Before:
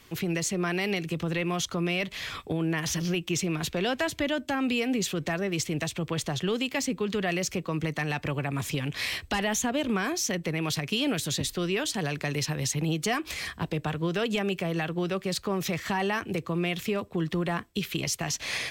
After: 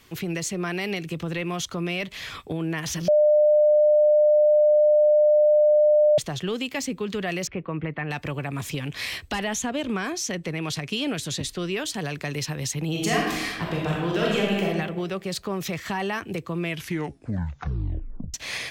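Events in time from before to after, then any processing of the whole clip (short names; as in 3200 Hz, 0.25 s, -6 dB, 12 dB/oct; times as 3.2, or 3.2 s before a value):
3.08–6.18 bleep 601 Hz -14 dBFS
7.47–8.11 inverse Chebyshev low-pass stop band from 9700 Hz, stop band 70 dB
9.44–11.68 LPF 11000 Hz
12.9–14.66 reverb throw, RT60 1.2 s, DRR -3.5 dB
16.6 tape stop 1.74 s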